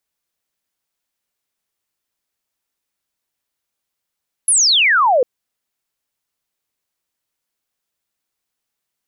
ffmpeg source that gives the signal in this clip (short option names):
-f lavfi -i "aevalsrc='0.316*clip(t/0.002,0,1)*clip((0.75-t)/0.002,0,1)*sin(2*PI*11000*0.75/log(470/11000)*(exp(log(470/11000)*t/0.75)-1))':d=0.75:s=44100"